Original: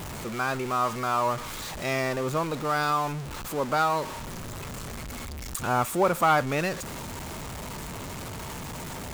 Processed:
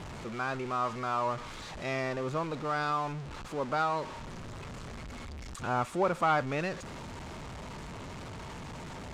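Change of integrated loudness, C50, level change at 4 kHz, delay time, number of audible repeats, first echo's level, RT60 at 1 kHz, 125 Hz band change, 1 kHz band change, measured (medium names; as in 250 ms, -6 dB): -5.5 dB, no reverb, -7.5 dB, no echo, no echo, no echo, no reverb, -5.0 dB, -5.5 dB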